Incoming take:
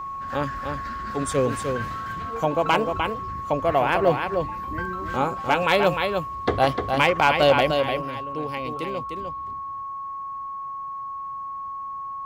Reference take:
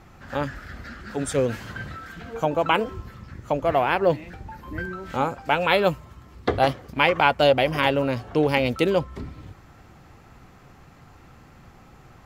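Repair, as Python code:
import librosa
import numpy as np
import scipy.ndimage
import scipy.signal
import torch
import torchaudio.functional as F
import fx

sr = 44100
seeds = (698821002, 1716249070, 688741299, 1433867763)

y = fx.fix_declip(x, sr, threshold_db=-8.5)
y = fx.notch(y, sr, hz=1100.0, q=30.0)
y = fx.fix_echo_inverse(y, sr, delay_ms=302, level_db=-5.5)
y = fx.gain(y, sr, db=fx.steps((0.0, 0.0), (7.71, 11.0)))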